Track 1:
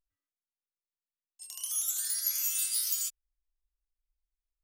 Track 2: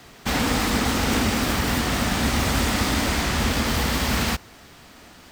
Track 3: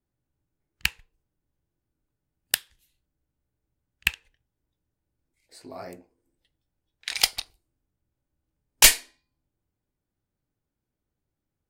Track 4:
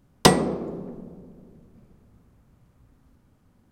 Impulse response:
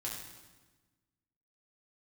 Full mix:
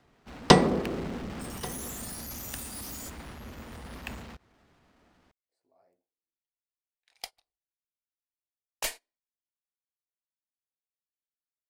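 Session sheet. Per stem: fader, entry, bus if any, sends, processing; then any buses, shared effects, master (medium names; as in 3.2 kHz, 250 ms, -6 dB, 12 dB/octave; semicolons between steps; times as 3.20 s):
-2.5 dB, 0.00 s, bus A, send -10 dB, echo send -14.5 dB, valve stage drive 39 dB, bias 0.75
-11.0 dB, 0.00 s, bus A, send -21 dB, no echo send, low-pass 1.3 kHz 6 dB/octave; compression 5:1, threshold -30 dBFS, peak gain reduction 11 dB
-19.5 dB, 0.00 s, no bus, no send, no echo send, peaking EQ 640 Hz +11.5 dB 1.8 oct
-1.0 dB, 0.25 s, no bus, no send, echo send -21.5 dB, low-pass 5.7 kHz 12 dB/octave
bus A: 0.0 dB, waveshaping leveller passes 5; peak limiter -37.5 dBFS, peak gain reduction 8 dB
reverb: on, RT60 1.2 s, pre-delay 4 ms
echo: delay 1133 ms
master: gate -40 dBFS, range -19 dB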